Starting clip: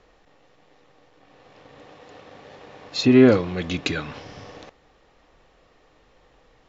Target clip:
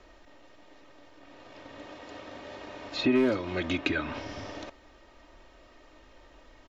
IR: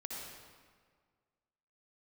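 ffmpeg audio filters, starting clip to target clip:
-filter_complex "[0:a]volume=2.24,asoftclip=hard,volume=0.447,acrossover=split=400|3100[s0][s1][s2];[s0]acompressor=threshold=0.0224:ratio=4[s3];[s1]acompressor=threshold=0.0316:ratio=4[s4];[s2]acompressor=threshold=0.00282:ratio=4[s5];[s3][s4][s5]amix=inputs=3:normalize=0,aecho=1:1:3.2:0.62,volume=1.12"

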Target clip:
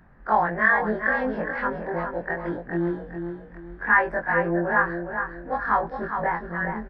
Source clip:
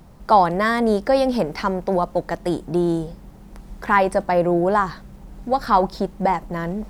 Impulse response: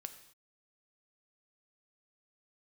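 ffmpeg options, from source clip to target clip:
-af "afftfilt=real='re':imag='-im':win_size=2048:overlap=0.75,lowpass=f=1700:t=q:w=8.4,aecho=1:1:413|826|1239|1652:0.447|0.147|0.0486|0.0161,volume=0.562"

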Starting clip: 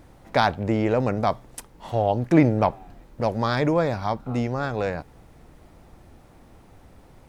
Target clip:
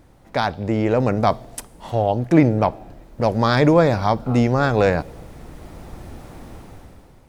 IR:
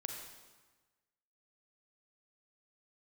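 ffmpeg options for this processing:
-filter_complex "[0:a]dynaudnorm=f=160:g=9:m=5.01,asplit=2[s0][s1];[s1]asuperstop=centerf=1400:order=4:qfactor=0.62[s2];[1:a]atrim=start_sample=2205[s3];[s2][s3]afir=irnorm=-1:irlink=0,volume=0.178[s4];[s0][s4]amix=inputs=2:normalize=0,volume=0.794"

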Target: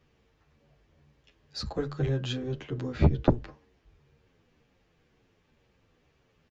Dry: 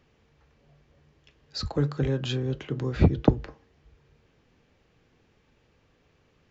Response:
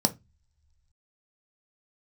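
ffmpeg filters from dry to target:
-filter_complex "[0:a]aeval=exprs='0.596*(cos(1*acos(clip(val(0)/0.596,-1,1)))-cos(1*PI/2))+0.237*(cos(2*acos(clip(val(0)/0.596,-1,1)))-cos(2*PI/2))':c=same,asplit=2[s0][s1];[s1]adelay=9.9,afreqshift=-2[s2];[s0][s2]amix=inputs=2:normalize=1"

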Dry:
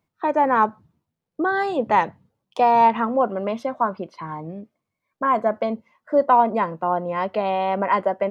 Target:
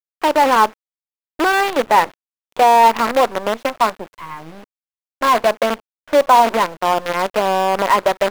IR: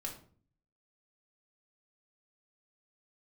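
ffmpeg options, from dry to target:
-filter_complex "[0:a]highpass=43,asplit=2[s0][s1];[s1]acontrast=80,volume=0.75[s2];[s0][s2]amix=inputs=2:normalize=0,acrusher=bits=3:dc=4:mix=0:aa=0.000001,bass=f=250:g=-9,treble=f=4000:g=-9,volume=0.75"

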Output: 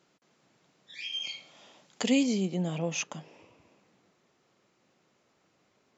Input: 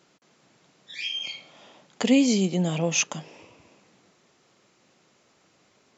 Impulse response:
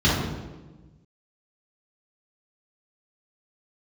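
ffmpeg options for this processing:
-af "asetnsamples=n=441:p=0,asendcmd='1.13 highshelf g 6.5;2.23 highshelf g -6',highshelf=f=3300:g=-2.5,volume=0.501"

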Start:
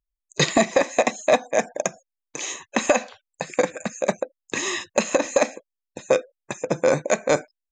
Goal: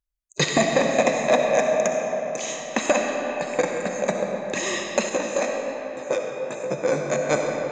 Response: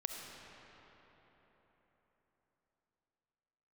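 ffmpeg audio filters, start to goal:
-filter_complex "[1:a]atrim=start_sample=2205[s0];[0:a][s0]afir=irnorm=-1:irlink=0,asettb=1/sr,asplit=3[s1][s2][s3];[s1]atrim=end=5.094[s4];[s2]atrim=start=5.09:end=7.31,asetpts=PTS-STARTPTS,afade=t=in:d=0.004:c=qsin,afade=t=out:st=2.216:d=0.004:c=qsin,flanger=delay=15:depth=6.6:speed=1.2[s5];[s3]atrim=start=7.306[s6];[s4][s5]acrossfade=d=0.004:c1=hsin:c2=qsin[s7];[s7][s6]acrossfade=d=0.004:c1=qsin:c2=hsin"

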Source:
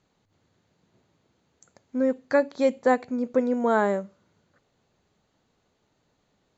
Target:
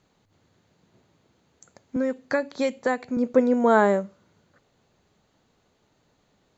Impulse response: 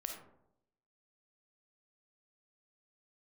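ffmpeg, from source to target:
-filter_complex "[0:a]asettb=1/sr,asplit=3[s0][s1][s2];[s0]atrim=end=1.964[s3];[s1]atrim=start=1.96:end=3.17,asetpts=PTS-STARTPTS,afade=t=in:d=0.004:c=qsin,afade=t=out:st=1.206:d=0.004:c=qsin,acrossover=split=190|1200[s4][s5][s6];[s4]acompressor=threshold=0.00501:ratio=4[s7];[s5]acompressor=threshold=0.0398:ratio=4[s8];[s6]acompressor=threshold=0.0251:ratio=4[s9];[s7][s8][s9]amix=inputs=3:normalize=0[s10];[s2]atrim=start=3.166[s11];[s3][s10]acrossfade=d=0.004:c1=hsin:c2=qsin[s12];[s12][s11]acrossfade=d=0.004:c1=qsin:c2=hsin,volume=1.58"

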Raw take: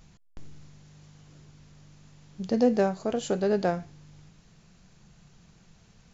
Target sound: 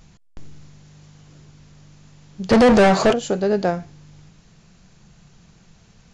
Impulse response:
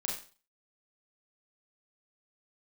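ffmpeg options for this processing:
-filter_complex "[0:a]asplit=3[s0][s1][s2];[s0]afade=t=out:st=2.49:d=0.02[s3];[s1]asplit=2[s4][s5];[s5]highpass=f=720:p=1,volume=44.7,asoftclip=type=tanh:threshold=0.266[s6];[s4][s6]amix=inputs=2:normalize=0,lowpass=f=2500:p=1,volume=0.501,afade=t=in:st=2.49:d=0.02,afade=t=out:st=3.12:d=0.02[s7];[s2]afade=t=in:st=3.12:d=0.02[s8];[s3][s7][s8]amix=inputs=3:normalize=0,aresample=22050,aresample=44100,volume=1.88"

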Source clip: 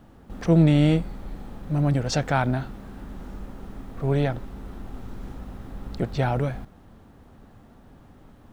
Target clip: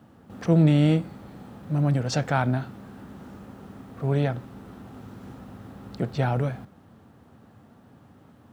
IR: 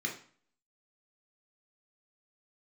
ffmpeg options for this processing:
-filter_complex "[0:a]highpass=f=86:w=0.5412,highpass=f=86:w=1.3066,asplit=2[s0][s1];[1:a]atrim=start_sample=2205[s2];[s1][s2]afir=irnorm=-1:irlink=0,volume=0.112[s3];[s0][s3]amix=inputs=2:normalize=0,volume=0.841"

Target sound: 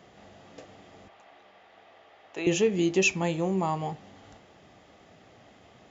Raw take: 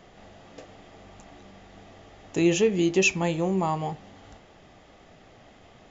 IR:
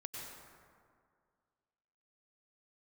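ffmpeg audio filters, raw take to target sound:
-filter_complex "[0:a]highpass=75,asettb=1/sr,asplit=3[s0][s1][s2];[s0]atrim=end=1.084[s3];[s1]atrim=start=1.08:end=2.47,asetpts=PTS-STARTPTS,afade=t=in:d=0.004:c=qsin,afade=t=out:st=1.386:d=0.004:c=qsin,acrossover=split=450 4200:gain=0.112 1 0.141[s4][s5][s6];[s4][s5][s6]amix=inputs=3:normalize=0[s7];[s2]atrim=start=2.466[s8];[s3][s7]acrossfade=d=0.004:c1=hsin:c2=qsin[s9];[s9][s8]acrossfade=d=0.004:c1=qsin:c2=hsin,volume=0.794"

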